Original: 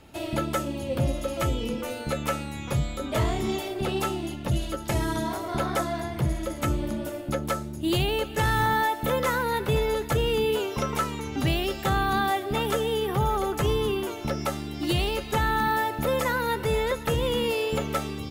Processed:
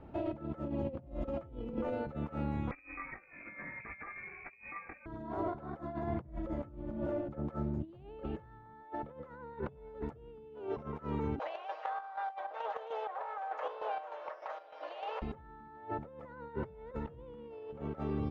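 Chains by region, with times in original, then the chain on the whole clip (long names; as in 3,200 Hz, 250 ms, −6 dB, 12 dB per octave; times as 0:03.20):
0:02.71–0:05.06: chorus effect 1.7 Hz, delay 17.5 ms, depth 3.7 ms + voice inversion scrambler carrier 2,500 Hz
0:11.39–0:15.22: lower of the sound and its delayed copy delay 6.4 ms + Chebyshev band-pass filter 550–6,600 Hz, order 4 + square-wave tremolo 3.3 Hz, depth 60%, duty 55%
whole clip: compressor whose output falls as the input rises −33 dBFS, ratio −0.5; low-pass filter 1,100 Hz 12 dB per octave; level −5 dB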